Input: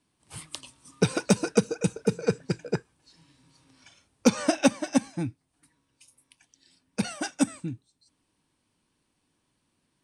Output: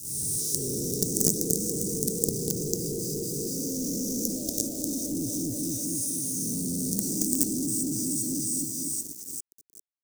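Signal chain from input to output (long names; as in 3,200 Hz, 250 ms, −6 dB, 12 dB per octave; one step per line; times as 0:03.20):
peak hold with a rise ahead of every peak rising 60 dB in 1.25 s
in parallel at −6.5 dB: hard clipping −13.5 dBFS, distortion −15 dB
on the sum: gain on a spectral selection 0:04.37–0:04.61, 440–4,600 Hz +10 dB
automatic gain control gain up to 10 dB
high-pass filter 41 Hz 12 dB per octave
high-shelf EQ 7,100 Hz +8.5 dB
on a send: echo with a time of its own for lows and highs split 2,600 Hz, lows 241 ms, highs 394 ms, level −4 dB
on the sum: downward compressor 2 to 1, threshold −28 dBFS, peak gain reduction 12 dB
log-companded quantiser 2 bits
elliptic band-stop filter 380–6,200 Hz, stop band 80 dB
low-shelf EQ 180 Hz −8 dB
one half of a high-frequency compander decoder only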